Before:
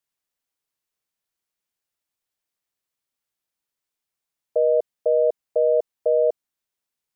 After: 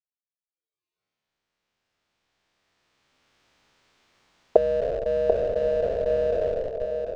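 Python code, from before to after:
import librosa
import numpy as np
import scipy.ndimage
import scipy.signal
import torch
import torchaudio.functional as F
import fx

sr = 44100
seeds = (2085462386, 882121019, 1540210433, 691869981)

p1 = fx.spec_trails(x, sr, decay_s=2.97)
p2 = fx.recorder_agc(p1, sr, target_db=-14.5, rise_db_per_s=8.6, max_gain_db=30)
p3 = fx.noise_reduce_blind(p2, sr, reduce_db=22)
p4 = fx.schmitt(p3, sr, flips_db=-17.5)
p5 = p3 + (p4 * librosa.db_to_amplitude(-6.5))
p6 = fx.air_absorb(p5, sr, metres=160.0)
p7 = p6 + fx.echo_single(p6, sr, ms=740, db=-6.5, dry=0)
y = p7 * librosa.db_to_amplitude(-6.5)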